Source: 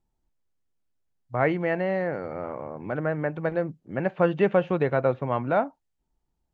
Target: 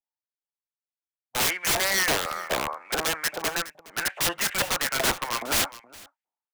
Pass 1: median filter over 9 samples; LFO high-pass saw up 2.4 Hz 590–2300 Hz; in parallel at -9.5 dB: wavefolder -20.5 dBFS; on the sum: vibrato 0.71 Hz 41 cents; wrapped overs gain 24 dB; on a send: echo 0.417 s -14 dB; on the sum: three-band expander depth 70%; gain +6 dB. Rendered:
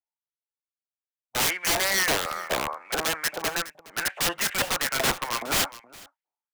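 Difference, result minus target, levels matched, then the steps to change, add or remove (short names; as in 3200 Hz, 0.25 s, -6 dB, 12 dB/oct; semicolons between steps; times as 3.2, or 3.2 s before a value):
wavefolder: distortion +35 dB
change: wavefolder -9 dBFS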